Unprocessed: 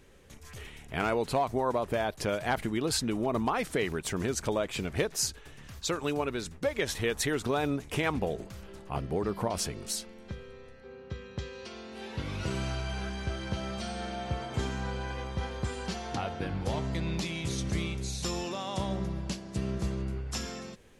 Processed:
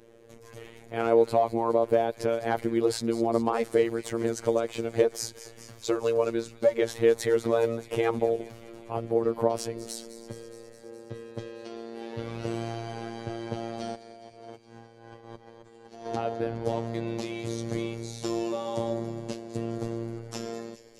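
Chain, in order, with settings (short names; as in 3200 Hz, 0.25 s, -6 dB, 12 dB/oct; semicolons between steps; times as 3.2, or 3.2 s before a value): bell 460 Hz +14.5 dB 1.6 oct; 13.95–16.06 negative-ratio compressor -38 dBFS, ratio -0.5; robotiser 115 Hz; thin delay 0.208 s, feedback 73%, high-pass 2600 Hz, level -13.5 dB; gain -3 dB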